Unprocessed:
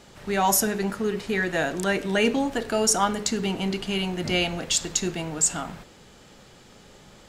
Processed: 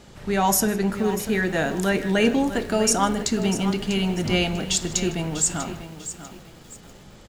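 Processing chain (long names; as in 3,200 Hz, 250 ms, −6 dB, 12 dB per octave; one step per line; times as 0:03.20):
low-shelf EQ 260 Hz +7 dB
on a send: single-tap delay 155 ms −20.5 dB
on the sum: feedback echo at a low word length 645 ms, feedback 35%, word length 7 bits, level −11.5 dB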